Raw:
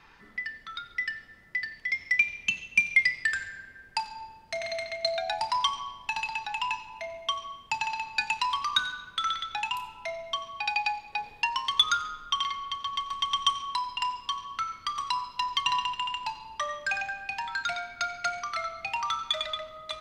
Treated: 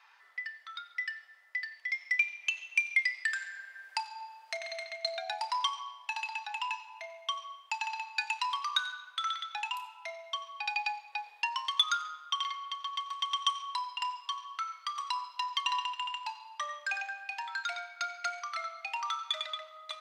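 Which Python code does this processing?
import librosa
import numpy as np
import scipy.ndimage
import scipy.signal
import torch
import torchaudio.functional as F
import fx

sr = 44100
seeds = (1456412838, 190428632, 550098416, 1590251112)

y = scipy.signal.sosfilt(scipy.signal.butter(4, 700.0, 'highpass', fs=sr, output='sos'), x)
y = fx.band_squash(y, sr, depth_pct=40, at=(2.43, 4.57))
y = y * librosa.db_to_amplitude(-4.5)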